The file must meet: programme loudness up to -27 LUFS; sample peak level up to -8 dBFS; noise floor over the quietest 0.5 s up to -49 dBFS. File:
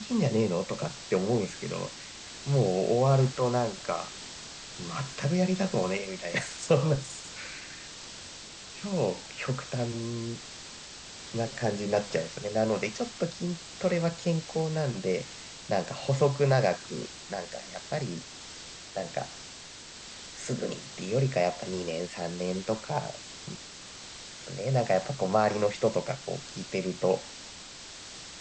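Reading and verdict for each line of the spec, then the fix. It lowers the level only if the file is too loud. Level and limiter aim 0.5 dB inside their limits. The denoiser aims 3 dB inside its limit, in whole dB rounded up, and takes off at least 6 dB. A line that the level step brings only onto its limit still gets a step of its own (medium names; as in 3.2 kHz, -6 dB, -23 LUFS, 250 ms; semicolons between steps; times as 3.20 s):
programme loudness -30.5 LUFS: pass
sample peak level -11.0 dBFS: pass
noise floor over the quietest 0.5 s -46 dBFS: fail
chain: noise reduction 6 dB, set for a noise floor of -46 dBFS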